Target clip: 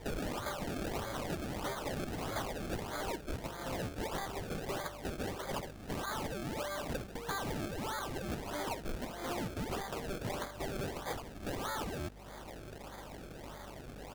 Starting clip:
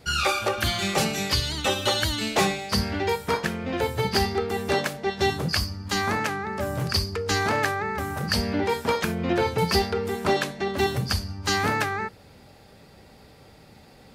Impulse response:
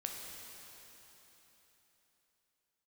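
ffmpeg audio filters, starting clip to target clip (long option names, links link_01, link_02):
-af "highpass=760,aecho=1:1:3.2:0.46,acompressor=threshold=-42dB:ratio=6,aresample=16000,asoftclip=type=tanh:threshold=-39.5dB,aresample=44100,aeval=exprs='val(0)+0.000891*(sin(2*PI*50*n/s)+sin(2*PI*2*50*n/s)/2+sin(2*PI*3*50*n/s)/3+sin(2*PI*4*50*n/s)/4+sin(2*PI*5*50*n/s)/5)':channel_layout=same,acrusher=samples=31:mix=1:aa=0.000001:lfo=1:lforange=31:lforate=1.6,volume=8dB"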